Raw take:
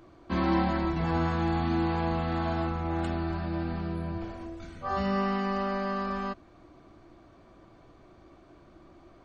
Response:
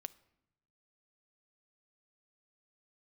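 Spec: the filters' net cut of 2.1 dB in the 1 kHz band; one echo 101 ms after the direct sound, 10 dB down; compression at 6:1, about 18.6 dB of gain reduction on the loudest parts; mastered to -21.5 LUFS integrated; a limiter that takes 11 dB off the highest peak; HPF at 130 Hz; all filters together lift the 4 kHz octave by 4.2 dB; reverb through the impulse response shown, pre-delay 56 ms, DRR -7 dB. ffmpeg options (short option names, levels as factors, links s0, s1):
-filter_complex "[0:a]highpass=130,equalizer=f=1000:t=o:g=-3,equalizer=f=4000:t=o:g=5.5,acompressor=threshold=0.00631:ratio=6,alimiter=level_in=7.94:limit=0.0631:level=0:latency=1,volume=0.126,aecho=1:1:101:0.316,asplit=2[s0][s1];[1:a]atrim=start_sample=2205,adelay=56[s2];[s1][s2]afir=irnorm=-1:irlink=0,volume=3.55[s3];[s0][s3]amix=inputs=2:normalize=0,volume=12.6"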